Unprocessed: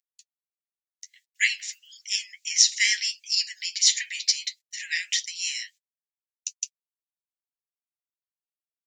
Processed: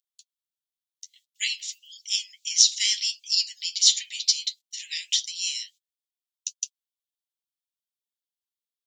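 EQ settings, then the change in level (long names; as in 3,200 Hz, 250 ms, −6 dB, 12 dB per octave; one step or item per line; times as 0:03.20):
four-pole ladder high-pass 2,900 Hz, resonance 55%
high-shelf EQ 5,300 Hz +7.5 dB
+4.0 dB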